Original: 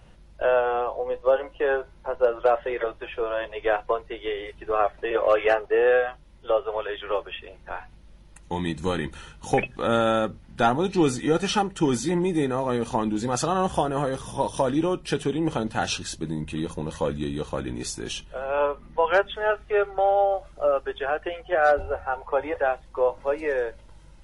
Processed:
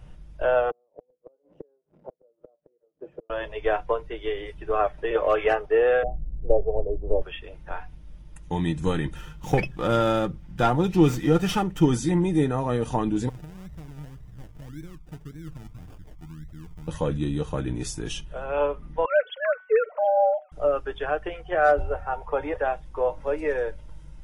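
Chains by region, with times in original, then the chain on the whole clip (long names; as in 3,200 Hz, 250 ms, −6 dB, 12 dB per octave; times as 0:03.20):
0:00.70–0:03.30: spike at every zero crossing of −23 dBFS + Chebyshev band-pass filter 190–530 Hz + gate with flip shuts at −23 dBFS, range −39 dB
0:06.03–0:07.22: Butterworth low-pass 770 Hz 48 dB per octave + spectral tilt −3 dB per octave
0:09.16–0:11.85: comb filter 5.7 ms, depth 32% + windowed peak hold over 3 samples
0:13.29–0:16.88: guitar amp tone stack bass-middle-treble 10-0-1 + sample-and-hold swept by an LFO 32×, swing 60% 1.8 Hz
0:19.05–0:20.52: three sine waves on the formant tracks + hum removal 373.6 Hz, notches 6
whole clip: low-shelf EQ 180 Hz +10.5 dB; notch filter 4,200 Hz, Q 8.3; comb filter 6.6 ms, depth 34%; level −2.5 dB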